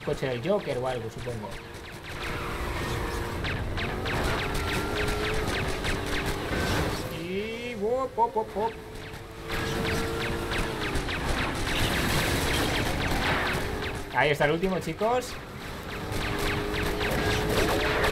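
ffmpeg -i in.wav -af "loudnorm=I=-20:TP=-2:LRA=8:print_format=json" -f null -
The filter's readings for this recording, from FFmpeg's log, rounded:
"input_i" : "-28.4",
"input_tp" : "-9.0",
"input_lra" : "3.3",
"input_thresh" : "-38.6",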